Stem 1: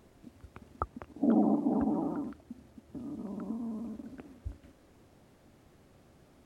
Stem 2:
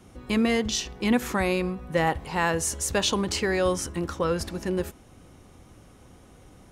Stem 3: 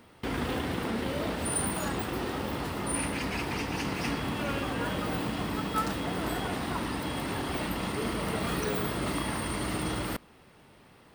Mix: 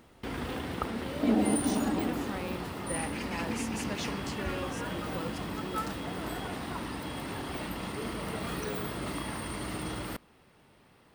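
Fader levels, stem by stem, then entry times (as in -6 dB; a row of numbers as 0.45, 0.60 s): -0.5, -15.0, -4.5 dB; 0.00, 0.95, 0.00 s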